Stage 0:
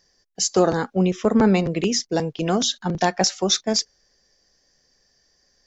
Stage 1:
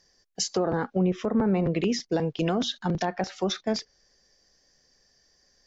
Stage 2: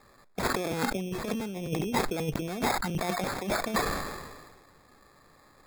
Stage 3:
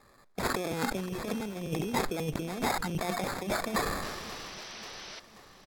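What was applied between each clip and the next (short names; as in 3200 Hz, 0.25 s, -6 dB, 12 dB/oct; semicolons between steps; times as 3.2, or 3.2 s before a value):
treble ducked by the level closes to 1600 Hz, closed at -14.5 dBFS; limiter -15 dBFS, peak gain reduction 9.5 dB; gain -1 dB
negative-ratio compressor -30 dBFS, ratio -0.5; sample-and-hold 15×; sustainer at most 38 dB/s
painted sound noise, 4.02–5.2, 300–6200 Hz -43 dBFS; feedback echo 0.534 s, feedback 55%, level -16.5 dB; gain -2 dB; SBC 128 kbps 44100 Hz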